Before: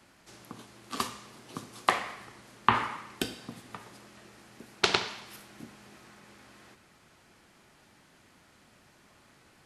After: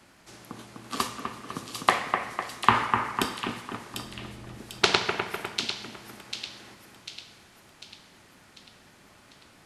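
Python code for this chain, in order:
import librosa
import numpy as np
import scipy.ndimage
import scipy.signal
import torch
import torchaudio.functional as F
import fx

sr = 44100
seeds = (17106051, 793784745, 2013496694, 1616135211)

y = fx.riaa(x, sr, side='playback', at=(3.94, 4.58))
y = fx.echo_split(y, sr, split_hz=2600.0, low_ms=251, high_ms=746, feedback_pct=52, wet_db=-5)
y = y * 10.0 ** (3.5 / 20.0)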